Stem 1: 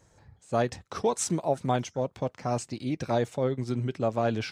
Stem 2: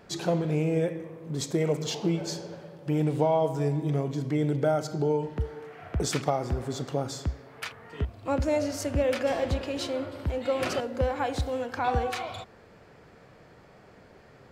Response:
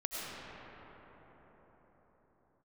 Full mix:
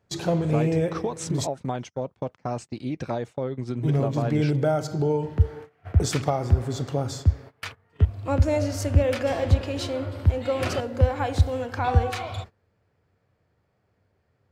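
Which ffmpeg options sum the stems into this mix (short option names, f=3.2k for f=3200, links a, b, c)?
-filter_complex "[0:a]highshelf=f=5.3k:g=-10.5,acompressor=threshold=-27dB:ratio=10,volume=2.5dB[a];[1:a]equalizer=f=91:w=2:g=15,volume=1.5dB,asplit=3[b][c][d];[b]atrim=end=1.47,asetpts=PTS-STARTPTS,afade=t=out:st=1.466:d=0.004:c=hsin[e];[c]atrim=start=1.47:end=3.83,asetpts=PTS-STARTPTS,volume=0[f];[d]atrim=start=3.83,asetpts=PTS-STARTPTS,afade=t=in:d=0.004:c=hsin[g];[e][f][g]concat=n=3:v=0:a=1[h];[a][h]amix=inputs=2:normalize=0,agate=range=-21dB:threshold=-37dB:ratio=16:detection=peak"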